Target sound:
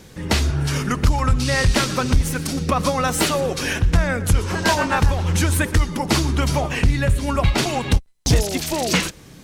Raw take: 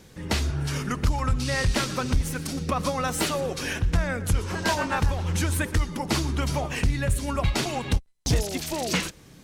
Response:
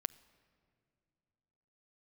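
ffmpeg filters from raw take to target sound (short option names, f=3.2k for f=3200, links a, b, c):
-filter_complex "[0:a]asettb=1/sr,asplit=3[a][b][c];[a]atrim=end=6.634[d];[b]atrim=start=6.63:end=7.58,asetpts=PTS-STARTPTS,afade=t=in:d=0.004:c=qsin,afade=t=out:st=0.946:d=0.004:c=qsin,acrossover=split=4100[e][f];[f]acompressor=threshold=-42dB:ratio=4:attack=1:release=60[g];[e][g]amix=inputs=2:normalize=0[h];[c]atrim=start=7.576[i];[d][h]acrossfade=d=0.004:c1=hsin:c2=qsin[j];[j][i]acrossfade=d=0.004:c1=qsin:c2=hsin,volume=6.5dB"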